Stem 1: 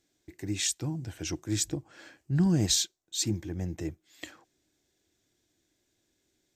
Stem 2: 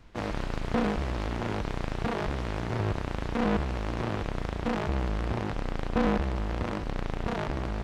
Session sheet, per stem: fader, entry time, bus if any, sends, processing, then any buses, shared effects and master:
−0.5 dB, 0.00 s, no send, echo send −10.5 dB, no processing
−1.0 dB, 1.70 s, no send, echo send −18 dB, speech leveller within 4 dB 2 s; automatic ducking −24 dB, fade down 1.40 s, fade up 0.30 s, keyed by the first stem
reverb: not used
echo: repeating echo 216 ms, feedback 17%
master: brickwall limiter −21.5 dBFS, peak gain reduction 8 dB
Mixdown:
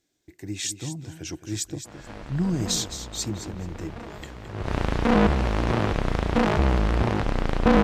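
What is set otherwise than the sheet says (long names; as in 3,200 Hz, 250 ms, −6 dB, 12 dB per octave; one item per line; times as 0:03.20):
stem 2 −1.0 dB → +7.5 dB
master: missing brickwall limiter −21.5 dBFS, peak gain reduction 8 dB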